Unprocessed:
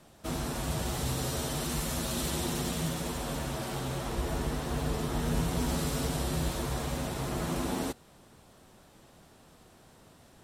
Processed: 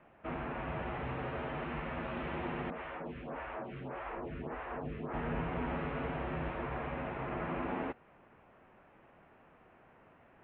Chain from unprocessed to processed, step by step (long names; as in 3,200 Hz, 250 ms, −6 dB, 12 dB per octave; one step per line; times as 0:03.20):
Butterworth low-pass 2,600 Hz 48 dB per octave
low-shelf EQ 300 Hz −10 dB
0:02.70–0:05.14: phaser with staggered stages 1.7 Hz